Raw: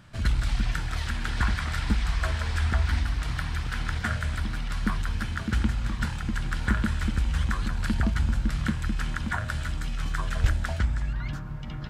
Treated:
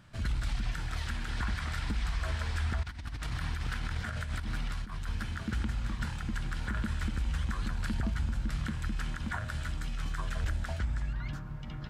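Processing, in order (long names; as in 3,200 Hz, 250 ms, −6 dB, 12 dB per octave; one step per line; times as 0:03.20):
0:02.83–0:05.08: compressor whose output falls as the input rises −29 dBFS, ratio −0.5
brickwall limiter −18.5 dBFS, peak gain reduction 8.5 dB
level −5 dB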